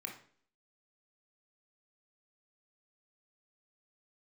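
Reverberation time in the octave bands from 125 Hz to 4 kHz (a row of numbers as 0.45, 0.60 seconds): 0.50, 0.60, 0.55, 0.50, 0.50, 0.50 seconds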